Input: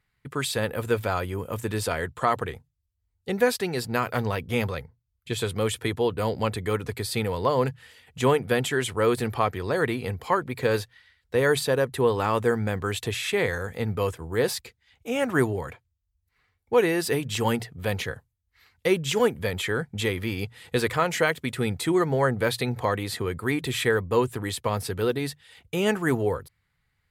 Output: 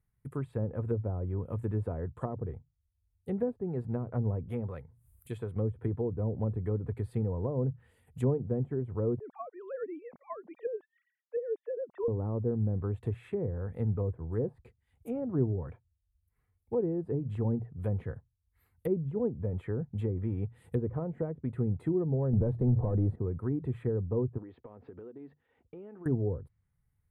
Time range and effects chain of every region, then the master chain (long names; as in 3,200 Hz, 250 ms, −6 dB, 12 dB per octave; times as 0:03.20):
0:04.48–0:05.56: spectral tilt +2 dB per octave + upward compression, threshold −40 dBFS
0:09.19–0:12.08: three sine waves on the formant tracks + high-pass filter 500 Hz 6 dB per octave
0:22.33–0:23.16: downward compressor 1.5 to 1, threshold −31 dBFS + leveller curve on the samples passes 3
0:24.38–0:26.06: Gaussian smoothing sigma 3.4 samples + low shelf with overshoot 190 Hz −12 dB, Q 1.5 + downward compressor 12 to 1, threshold −36 dBFS
whole clip: treble cut that deepens with the level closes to 530 Hz, closed at −21.5 dBFS; drawn EQ curve 110 Hz 0 dB, 980 Hz −12 dB, 5,600 Hz −29 dB, 9,400 Hz −3 dB